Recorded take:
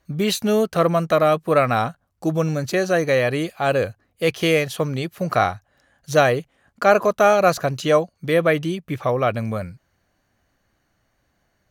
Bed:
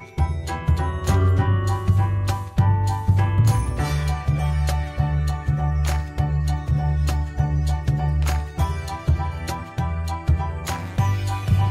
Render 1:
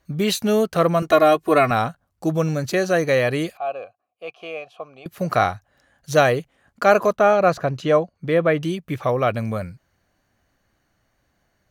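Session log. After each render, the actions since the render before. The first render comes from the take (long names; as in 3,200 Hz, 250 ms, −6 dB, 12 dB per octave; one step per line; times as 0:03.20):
0:01.02–0:01.71: comb filter 2.8 ms, depth 95%
0:03.57–0:05.06: formant filter a
0:07.16–0:08.63: low-pass filter 2,000 Hz 6 dB per octave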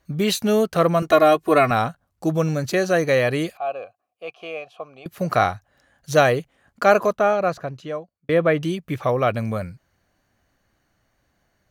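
0:06.86–0:08.29: fade out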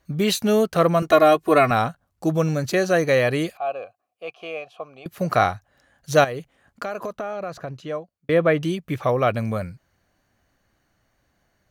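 0:06.24–0:07.76: downward compressor, threshold −26 dBFS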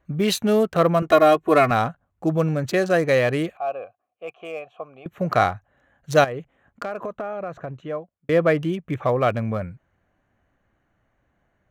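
adaptive Wiener filter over 9 samples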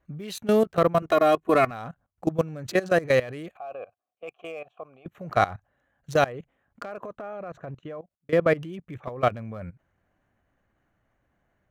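output level in coarse steps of 18 dB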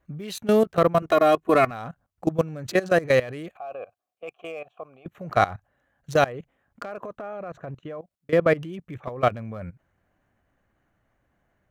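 level +1.5 dB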